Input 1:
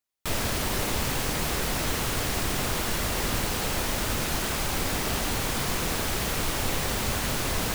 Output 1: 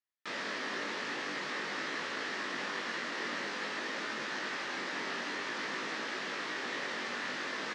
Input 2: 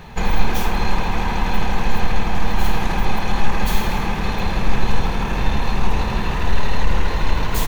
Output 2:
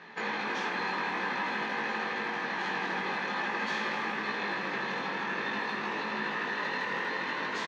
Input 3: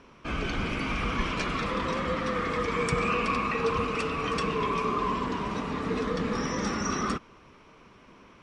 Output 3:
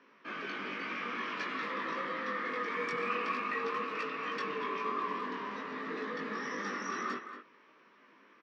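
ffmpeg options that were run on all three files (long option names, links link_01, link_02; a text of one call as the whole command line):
ffmpeg -i in.wav -filter_complex "[0:a]highpass=frequency=230:width=0.5412,highpass=frequency=230:width=1.3066,equalizer=frequency=720:width_type=q:width=4:gain=-4,equalizer=frequency=1200:width_type=q:width=4:gain=3,equalizer=frequency=1800:width_type=q:width=4:gain=10,lowpass=frequency=5400:width=0.5412,lowpass=frequency=5400:width=1.3066,asplit=2[link_01][link_02];[link_02]adelay=230,highpass=300,lowpass=3400,asoftclip=type=hard:threshold=-19.5dB,volume=-9dB[link_03];[link_01][link_03]amix=inputs=2:normalize=0,flanger=delay=18.5:depth=2.4:speed=0.5,volume=-6dB" out.wav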